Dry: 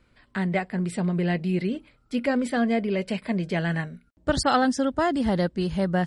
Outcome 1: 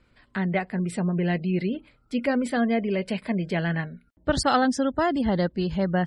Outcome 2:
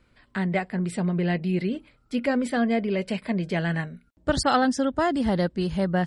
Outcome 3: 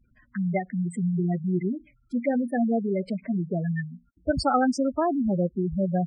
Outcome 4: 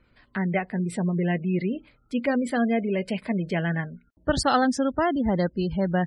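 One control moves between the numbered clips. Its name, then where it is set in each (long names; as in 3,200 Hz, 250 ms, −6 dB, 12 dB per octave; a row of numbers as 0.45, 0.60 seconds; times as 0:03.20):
gate on every frequency bin, under each frame's peak: −40, −55, −10, −30 decibels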